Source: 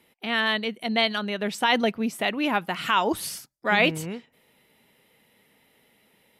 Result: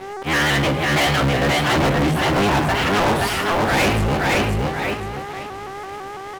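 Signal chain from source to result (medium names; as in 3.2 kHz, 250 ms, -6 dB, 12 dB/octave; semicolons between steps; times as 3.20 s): cycle switcher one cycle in 3, inverted; in parallel at +2.5 dB: compression, threshold -37 dBFS, peak gain reduction 19 dB; on the sum: mains buzz 400 Hz, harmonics 30, -45 dBFS -9 dB/octave; slow attack 130 ms; tone controls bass +4 dB, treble -14 dB; doubling 15 ms -11.5 dB; feedback delay 524 ms, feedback 26%, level -4 dB; on a send at -7 dB: reverberation, pre-delay 5 ms; on the sum: waveshaping leveller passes 5; vibrato with a chosen wave saw up 6 Hz, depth 100 cents; trim -7 dB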